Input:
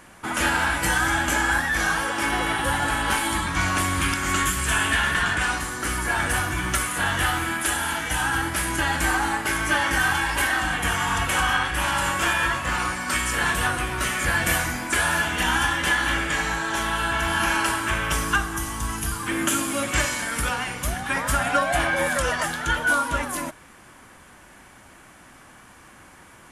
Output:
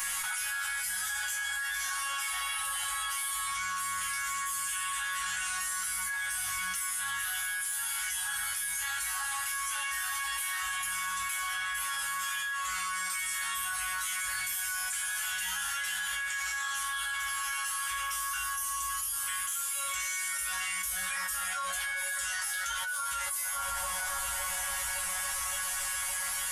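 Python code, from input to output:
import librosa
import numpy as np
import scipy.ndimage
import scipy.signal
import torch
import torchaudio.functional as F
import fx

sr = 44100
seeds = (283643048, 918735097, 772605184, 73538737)

y = scipy.signal.sosfilt(scipy.signal.cheby1(2, 1.0, [100.0, 1000.0], 'bandstop', fs=sr, output='sos'), x)
y = F.preemphasis(torch.from_numpy(y), 0.9).numpy()
y = fx.resonator_bank(y, sr, root=54, chord='fifth', decay_s=0.29)
y = 10.0 ** (-30.5 / 20.0) * np.tanh(y / 10.0 ** (-30.5 / 20.0))
y = fx.doubler(y, sr, ms=21.0, db=-5.5)
y = fx.echo_bbd(y, sr, ms=565, stages=4096, feedback_pct=77, wet_db=-14.0)
y = fx.env_flatten(y, sr, amount_pct=100)
y = y * librosa.db_to_amplitude(5.5)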